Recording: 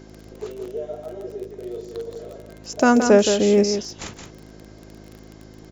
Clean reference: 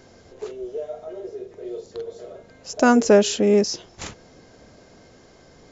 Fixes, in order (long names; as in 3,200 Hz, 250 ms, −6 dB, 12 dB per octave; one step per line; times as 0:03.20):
click removal
hum removal 53 Hz, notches 7
repair the gap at 0:00.65/0:02.15, 5.1 ms
echo removal 171 ms −7.5 dB